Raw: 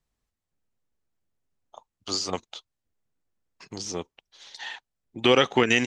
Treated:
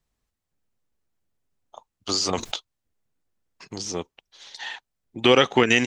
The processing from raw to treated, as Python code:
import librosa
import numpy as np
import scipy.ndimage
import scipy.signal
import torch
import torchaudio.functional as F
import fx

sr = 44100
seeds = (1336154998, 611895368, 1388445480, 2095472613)

y = fx.env_flatten(x, sr, amount_pct=70, at=(2.09, 2.56))
y = F.gain(torch.from_numpy(y), 2.5).numpy()